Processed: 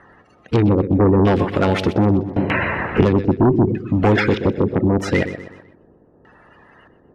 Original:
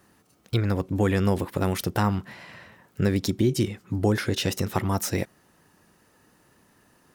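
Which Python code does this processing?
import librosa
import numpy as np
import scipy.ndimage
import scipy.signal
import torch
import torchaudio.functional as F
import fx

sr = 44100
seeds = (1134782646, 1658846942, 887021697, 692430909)

p1 = fx.spec_quant(x, sr, step_db=30)
p2 = fx.wow_flutter(p1, sr, seeds[0], rate_hz=2.1, depth_cents=19.0)
p3 = fx.filter_lfo_lowpass(p2, sr, shape='square', hz=0.8, low_hz=430.0, high_hz=2700.0, q=1.3)
p4 = p3 + fx.echo_feedback(p3, sr, ms=125, feedback_pct=42, wet_db=-13.0, dry=0)
p5 = fx.cheby_harmonics(p4, sr, harmonics=(5,), levels_db=(-9,), full_scale_db=-9.0)
p6 = fx.band_squash(p5, sr, depth_pct=100, at=(2.36, 3.25))
y = F.gain(torch.from_numpy(p6), 2.5).numpy()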